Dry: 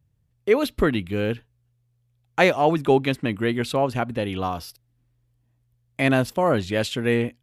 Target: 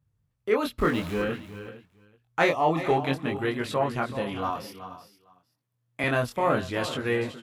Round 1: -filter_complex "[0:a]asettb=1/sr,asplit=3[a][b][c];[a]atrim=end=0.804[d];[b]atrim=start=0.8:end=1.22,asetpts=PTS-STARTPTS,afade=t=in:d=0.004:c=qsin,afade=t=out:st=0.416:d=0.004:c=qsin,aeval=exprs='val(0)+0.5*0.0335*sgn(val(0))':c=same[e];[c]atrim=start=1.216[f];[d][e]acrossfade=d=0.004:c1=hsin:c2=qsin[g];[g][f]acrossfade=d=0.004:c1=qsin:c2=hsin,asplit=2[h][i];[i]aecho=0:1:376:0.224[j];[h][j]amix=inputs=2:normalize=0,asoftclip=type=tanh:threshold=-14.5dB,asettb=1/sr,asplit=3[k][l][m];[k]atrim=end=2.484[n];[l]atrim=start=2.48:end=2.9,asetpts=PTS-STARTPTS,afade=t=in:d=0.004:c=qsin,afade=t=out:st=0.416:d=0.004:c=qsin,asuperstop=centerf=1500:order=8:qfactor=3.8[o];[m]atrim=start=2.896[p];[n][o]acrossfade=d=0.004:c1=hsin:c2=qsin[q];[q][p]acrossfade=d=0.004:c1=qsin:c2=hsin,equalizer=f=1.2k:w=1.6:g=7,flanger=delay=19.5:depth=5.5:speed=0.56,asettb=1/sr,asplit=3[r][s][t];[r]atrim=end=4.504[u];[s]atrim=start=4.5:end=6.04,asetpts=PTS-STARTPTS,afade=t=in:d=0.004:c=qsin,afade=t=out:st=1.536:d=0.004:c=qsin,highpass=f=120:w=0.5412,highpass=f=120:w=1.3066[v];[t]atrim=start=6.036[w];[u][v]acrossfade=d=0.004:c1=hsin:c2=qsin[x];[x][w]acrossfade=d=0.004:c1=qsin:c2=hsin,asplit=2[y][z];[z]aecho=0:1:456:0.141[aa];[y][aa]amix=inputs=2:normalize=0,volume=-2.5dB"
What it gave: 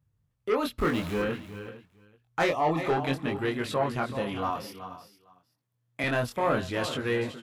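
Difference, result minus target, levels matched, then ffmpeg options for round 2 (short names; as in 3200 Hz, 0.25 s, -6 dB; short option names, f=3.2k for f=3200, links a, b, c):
soft clip: distortion +17 dB
-filter_complex "[0:a]asettb=1/sr,asplit=3[a][b][c];[a]atrim=end=0.804[d];[b]atrim=start=0.8:end=1.22,asetpts=PTS-STARTPTS,afade=t=in:d=0.004:c=qsin,afade=t=out:st=0.416:d=0.004:c=qsin,aeval=exprs='val(0)+0.5*0.0335*sgn(val(0))':c=same[e];[c]atrim=start=1.216[f];[d][e]acrossfade=d=0.004:c1=hsin:c2=qsin[g];[g][f]acrossfade=d=0.004:c1=qsin:c2=hsin,asplit=2[h][i];[i]aecho=0:1:376:0.224[j];[h][j]amix=inputs=2:normalize=0,asoftclip=type=tanh:threshold=-3dB,asettb=1/sr,asplit=3[k][l][m];[k]atrim=end=2.484[n];[l]atrim=start=2.48:end=2.9,asetpts=PTS-STARTPTS,afade=t=in:d=0.004:c=qsin,afade=t=out:st=0.416:d=0.004:c=qsin,asuperstop=centerf=1500:order=8:qfactor=3.8[o];[m]atrim=start=2.896[p];[n][o]acrossfade=d=0.004:c1=hsin:c2=qsin[q];[q][p]acrossfade=d=0.004:c1=qsin:c2=hsin,equalizer=f=1.2k:w=1.6:g=7,flanger=delay=19.5:depth=5.5:speed=0.56,asettb=1/sr,asplit=3[r][s][t];[r]atrim=end=4.504[u];[s]atrim=start=4.5:end=6.04,asetpts=PTS-STARTPTS,afade=t=in:d=0.004:c=qsin,afade=t=out:st=1.536:d=0.004:c=qsin,highpass=f=120:w=0.5412,highpass=f=120:w=1.3066[v];[t]atrim=start=6.036[w];[u][v]acrossfade=d=0.004:c1=hsin:c2=qsin[x];[x][w]acrossfade=d=0.004:c1=qsin:c2=hsin,asplit=2[y][z];[z]aecho=0:1:456:0.141[aa];[y][aa]amix=inputs=2:normalize=0,volume=-2.5dB"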